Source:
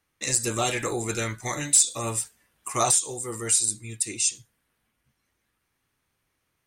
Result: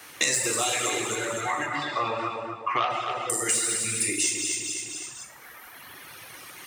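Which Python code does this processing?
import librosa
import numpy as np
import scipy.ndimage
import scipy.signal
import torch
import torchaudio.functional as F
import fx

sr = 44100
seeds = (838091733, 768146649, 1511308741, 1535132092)

y = fx.spec_trails(x, sr, decay_s=0.38)
y = fx.lowpass(y, sr, hz=1500.0, slope=24, at=(0.9, 3.3))
y = 10.0 ** (-13.5 / 20.0) * np.tanh(y / 10.0 ** (-13.5 / 20.0))
y = fx.rev_gated(y, sr, seeds[0], gate_ms=230, shape='flat', drr_db=-1.0)
y = fx.dereverb_blind(y, sr, rt60_s=1.7)
y = fx.echo_feedback(y, sr, ms=255, feedback_pct=23, wet_db=-9)
y = fx.rider(y, sr, range_db=3, speed_s=2.0)
y = fx.highpass(y, sr, hz=570.0, slope=6)
y = fx.band_squash(y, sr, depth_pct=100)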